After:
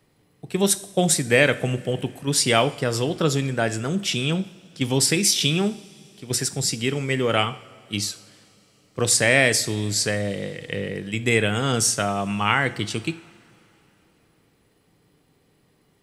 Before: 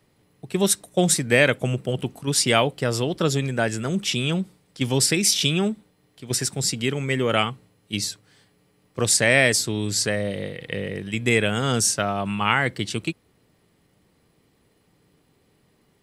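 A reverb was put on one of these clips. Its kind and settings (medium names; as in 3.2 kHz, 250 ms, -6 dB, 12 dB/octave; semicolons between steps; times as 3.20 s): two-slope reverb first 0.53 s, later 3.4 s, from -18 dB, DRR 12 dB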